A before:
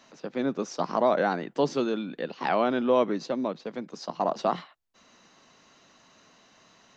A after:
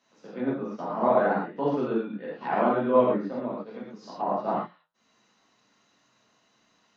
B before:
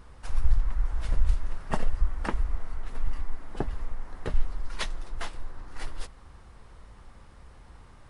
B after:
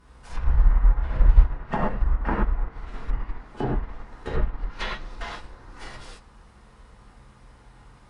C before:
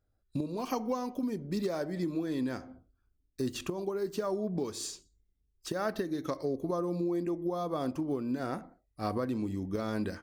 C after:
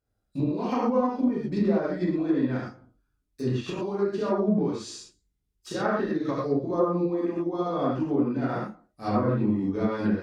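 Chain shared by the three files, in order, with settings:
high-pass filter 58 Hz 6 dB per octave
reverb whose tail is shaped and stops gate 150 ms flat, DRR −7 dB
flanger 0.72 Hz, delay 1.9 ms, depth 7.5 ms, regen −85%
treble cut that deepens with the level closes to 1,800 Hz, closed at −25 dBFS
expander for the loud parts 1.5 to 1, over −40 dBFS
loudness normalisation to −27 LKFS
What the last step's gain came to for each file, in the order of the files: +1.0, +10.0, +6.5 decibels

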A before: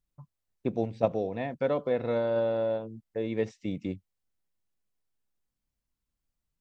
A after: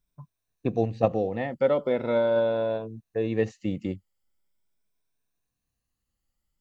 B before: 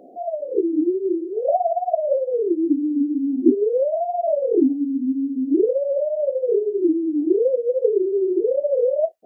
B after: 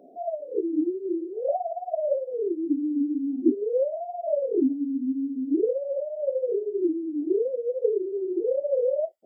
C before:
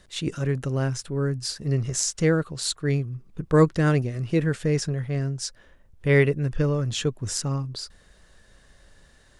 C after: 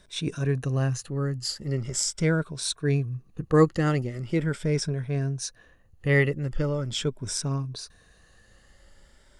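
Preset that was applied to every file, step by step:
rippled gain that drifts along the octave scale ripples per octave 1.6, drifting +0.41 Hz, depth 9 dB
loudness normalisation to −27 LKFS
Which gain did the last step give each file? +3.0, −7.0, −2.5 decibels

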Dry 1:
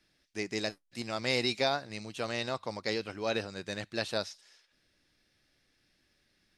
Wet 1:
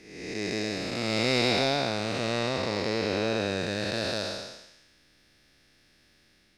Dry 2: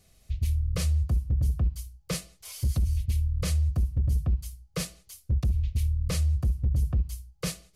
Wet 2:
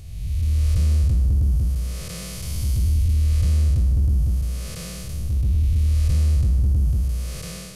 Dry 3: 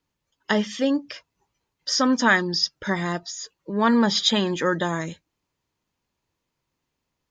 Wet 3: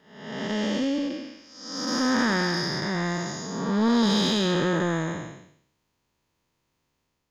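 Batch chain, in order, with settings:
spectrum smeared in time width 455 ms
in parallel at −3.5 dB: soft clipping −29.5 dBFS
on the sum: normalise the peak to −12 dBFS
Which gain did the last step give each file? +6.5, +6.5, +1.0 decibels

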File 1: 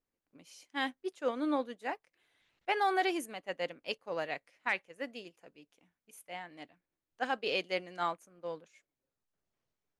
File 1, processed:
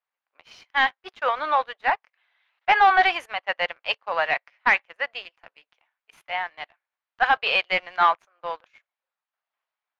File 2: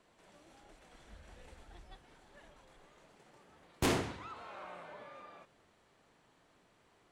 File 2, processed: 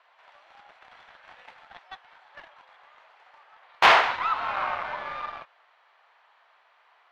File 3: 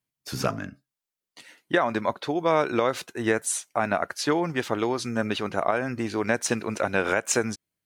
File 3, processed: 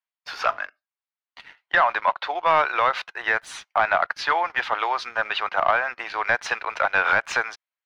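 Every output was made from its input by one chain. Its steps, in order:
high-pass filter 790 Hz 24 dB per octave
leveller curve on the samples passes 2
high-frequency loss of the air 310 metres
loudness normalisation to −23 LKFS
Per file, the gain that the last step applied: +13.0, +17.0, +4.5 decibels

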